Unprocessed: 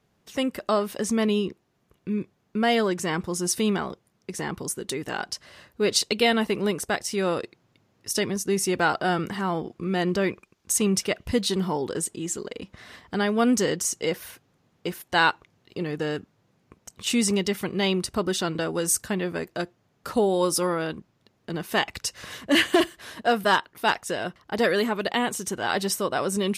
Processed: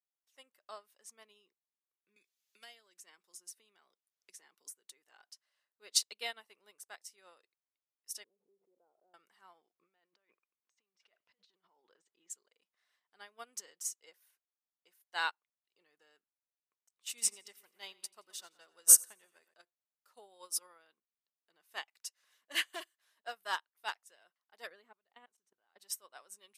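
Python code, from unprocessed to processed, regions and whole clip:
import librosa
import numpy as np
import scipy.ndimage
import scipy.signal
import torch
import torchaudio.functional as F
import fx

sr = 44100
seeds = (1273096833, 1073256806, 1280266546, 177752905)

y = fx.chain(x, sr, fx.highpass(hz=180.0, slope=12),
    fx.peak_eq(hz=910.0, db=-6.0, octaves=1.9),
    fx.band_squash(depth_pct=100), at=(2.16, 4.72))
y = fx.chain(y, sr, fx.ladder_lowpass(hz=600.0, resonance_pct=45),
    fx.pre_swell(db_per_s=62.0), at=(8.24, 9.14))
y = fx.chain(y, sr, fx.over_compress(threshold_db=-30.0, ratio=-0.5),
    fx.air_absorb(metres=190.0), at=(9.75, 12.3))
y = fx.chain(y, sr, fx.high_shelf(hz=7100.0, db=5.0),
    fx.echo_split(split_hz=2700.0, low_ms=123, high_ms=86, feedback_pct=52, wet_db=-11.0), at=(17.09, 19.54))
y = fx.chain(y, sr, fx.riaa(side='playback'),
    fx.level_steps(step_db=21), at=(24.67, 25.8))
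y = scipy.signal.sosfilt(scipy.signal.butter(2, 770.0, 'highpass', fs=sr, output='sos'), y)
y = fx.high_shelf(y, sr, hz=6400.0, db=8.0)
y = fx.upward_expand(y, sr, threshold_db=-33.0, expansion=2.5)
y = y * 10.0 ** (-3.0 / 20.0)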